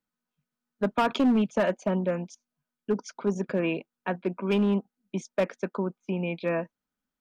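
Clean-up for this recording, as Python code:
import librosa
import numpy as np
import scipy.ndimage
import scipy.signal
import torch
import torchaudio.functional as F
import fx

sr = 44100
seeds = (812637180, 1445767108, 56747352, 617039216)

y = fx.fix_declip(x, sr, threshold_db=-18.0)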